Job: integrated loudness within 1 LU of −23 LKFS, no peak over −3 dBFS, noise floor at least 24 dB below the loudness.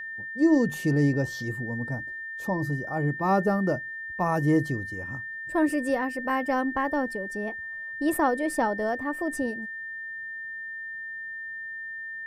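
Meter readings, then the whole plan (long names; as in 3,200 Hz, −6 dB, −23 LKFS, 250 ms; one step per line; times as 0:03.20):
interfering tone 1,800 Hz; level of the tone −34 dBFS; integrated loudness −28.0 LKFS; sample peak −10.5 dBFS; target loudness −23.0 LKFS
→ notch filter 1,800 Hz, Q 30
level +5 dB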